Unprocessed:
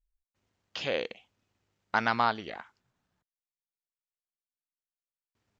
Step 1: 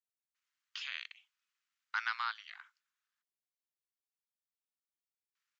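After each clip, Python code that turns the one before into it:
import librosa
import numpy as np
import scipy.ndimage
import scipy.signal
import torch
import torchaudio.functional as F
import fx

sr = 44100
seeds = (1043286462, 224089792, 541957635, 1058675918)

y = scipy.signal.sosfilt(scipy.signal.butter(6, 1200.0, 'highpass', fs=sr, output='sos'), x)
y = F.gain(torch.from_numpy(y), -5.5).numpy()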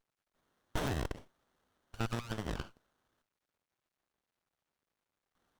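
y = np.minimum(x, 2.0 * 10.0 ** (-35.5 / 20.0) - x)
y = fx.over_compress(y, sr, threshold_db=-43.0, ratio=-0.5)
y = fx.running_max(y, sr, window=17)
y = F.gain(torch.from_numpy(y), 10.5).numpy()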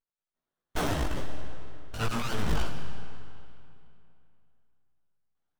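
y = fx.leveller(x, sr, passes=5)
y = fx.chorus_voices(y, sr, voices=4, hz=0.61, base_ms=17, depth_ms=4.1, mix_pct=45)
y = fx.rev_freeverb(y, sr, rt60_s=2.7, hf_ratio=0.85, predelay_ms=75, drr_db=8.0)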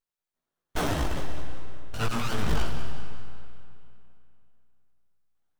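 y = fx.echo_feedback(x, sr, ms=194, feedback_pct=42, wet_db=-12)
y = F.gain(torch.from_numpy(y), 1.5).numpy()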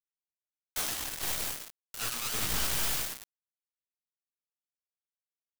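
y = scipy.signal.lfilter([1.0, -0.9], [1.0], x)
y = fx.mod_noise(y, sr, seeds[0], snr_db=10)
y = fx.quant_dither(y, sr, seeds[1], bits=6, dither='none')
y = F.gain(torch.from_numpy(y), 5.5).numpy()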